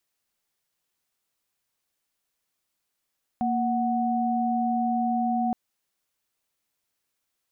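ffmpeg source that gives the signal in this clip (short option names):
-f lavfi -i "aevalsrc='0.0562*(sin(2*PI*233.08*t)+sin(2*PI*739.99*t))':d=2.12:s=44100"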